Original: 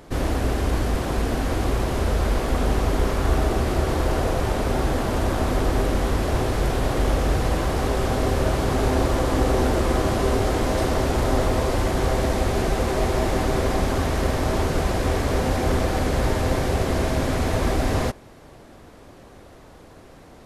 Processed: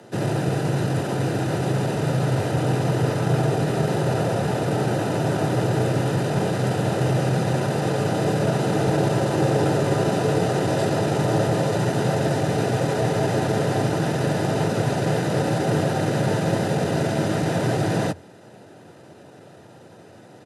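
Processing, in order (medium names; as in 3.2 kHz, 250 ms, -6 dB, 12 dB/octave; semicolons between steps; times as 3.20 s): frequency shift +96 Hz; pitch shift -2 st; comb of notches 1.1 kHz; trim +1 dB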